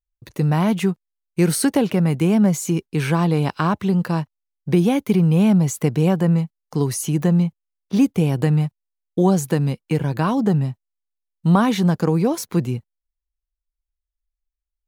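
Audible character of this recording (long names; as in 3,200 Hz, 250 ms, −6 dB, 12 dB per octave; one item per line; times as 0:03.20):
background noise floor −84 dBFS
spectral slope −7.5 dB per octave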